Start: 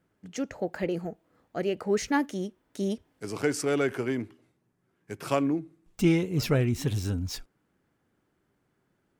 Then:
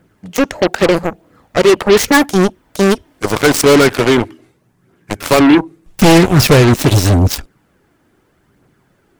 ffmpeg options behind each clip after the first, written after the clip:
ffmpeg -i in.wav -af "aphaser=in_gain=1:out_gain=1:delay=3.4:decay=0.36:speed=0.81:type=triangular,aeval=exprs='0.316*sin(PI/2*2.51*val(0)/0.316)':channel_layout=same,aeval=exprs='0.316*(cos(1*acos(clip(val(0)/0.316,-1,1)))-cos(1*PI/2))+0.0794*(cos(7*acos(clip(val(0)/0.316,-1,1)))-cos(7*PI/2))':channel_layout=same,volume=7dB" out.wav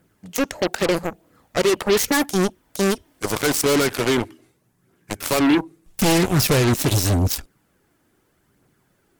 ffmpeg -i in.wav -af "aemphasis=mode=production:type=cd,alimiter=level_in=0.5dB:limit=-1dB:release=50:level=0:latency=1,volume=-8.5dB" out.wav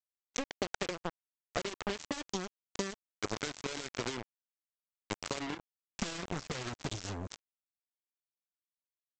ffmpeg -i in.wav -af "acompressor=threshold=-26dB:ratio=16,aresample=16000,acrusher=bits=3:mix=0:aa=0.5,aresample=44100,volume=-5dB" out.wav

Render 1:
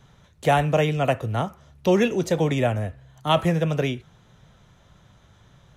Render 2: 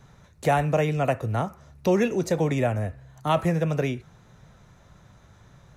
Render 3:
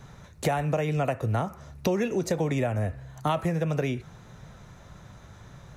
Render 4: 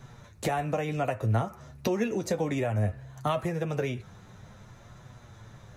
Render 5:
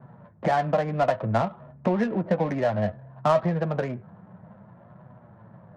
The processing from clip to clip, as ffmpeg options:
ffmpeg -i in.wav -filter_complex "[0:a]asplit=2[link_01][link_02];[link_02]acompressor=threshold=-27dB:ratio=6,volume=0dB[link_03];[link_01][link_03]amix=inputs=2:normalize=0,equalizer=frequency=3200:width=4.2:gain=-9.5,volume=-4.5dB" out.wav
ffmpeg -i in.wav -af "acompressor=threshold=-28dB:ratio=6,volume=5dB" out.wav
ffmpeg -i in.wav -af "flanger=delay=7.9:depth=2.6:regen=36:speed=0.59:shape=triangular,volume=2dB" out.wav
ffmpeg -i in.wav -af "highpass=160,equalizer=frequency=180:width_type=q:width=4:gain=8,equalizer=frequency=290:width_type=q:width=4:gain=-3,equalizer=frequency=410:width_type=q:width=4:gain=-6,equalizer=frequency=630:width_type=q:width=4:gain=6,equalizer=frequency=980:width_type=q:width=4:gain=5,equalizer=frequency=1700:width_type=q:width=4:gain=4,lowpass=frequency=2200:width=0.5412,lowpass=frequency=2200:width=1.3066,adynamicsmooth=sensitivity=4:basefreq=770,volume=4dB" out.wav

